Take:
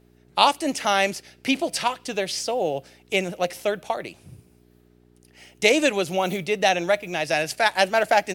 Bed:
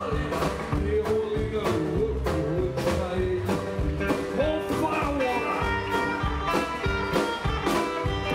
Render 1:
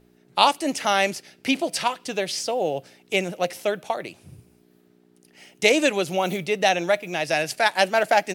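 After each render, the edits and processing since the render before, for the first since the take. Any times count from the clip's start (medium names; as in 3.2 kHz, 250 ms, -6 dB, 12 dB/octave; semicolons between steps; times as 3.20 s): de-hum 60 Hz, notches 2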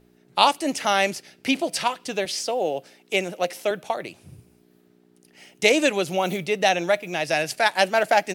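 2.25–3.71 s: high-pass 200 Hz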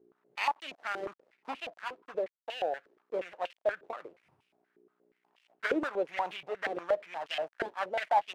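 dead-time distortion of 0.22 ms; step-sequenced band-pass 8.4 Hz 390–2800 Hz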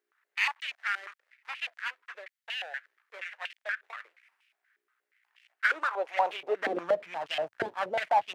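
high-pass sweep 1.8 kHz -> 110 Hz, 5.57–7.16 s; in parallel at -7.5 dB: saturation -28.5 dBFS, distortion -8 dB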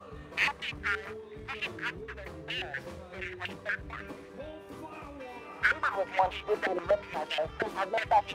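add bed -18.5 dB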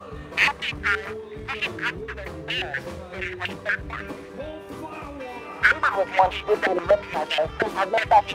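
trim +8.5 dB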